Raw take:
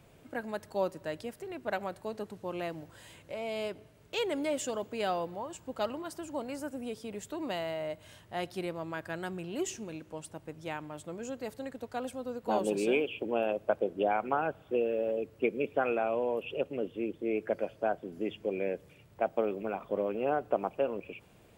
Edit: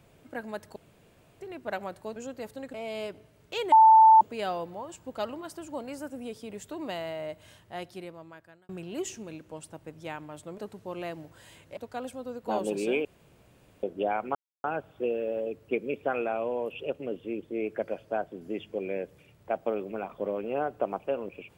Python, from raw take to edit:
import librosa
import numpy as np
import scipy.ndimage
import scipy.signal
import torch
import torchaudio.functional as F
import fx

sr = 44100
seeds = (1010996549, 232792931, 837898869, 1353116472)

y = fx.edit(x, sr, fx.room_tone_fill(start_s=0.76, length_s=0.65),
    fx.swap(start_s=2.16, length_s=1.19, other_s=11.19, other_length_s=0.58),
    fx.bleep(start_s=4.33, length_s=0.49, hz=885.0, db=-12.0),
    fx.fade_out_span(start_s=8.07, length_s=1.23),
    fx.room_tone_fill(start_s=13.05, length_s=0.78),
    fx.insert_silence(at_s=14.35, length_s=0.29), tone=tone)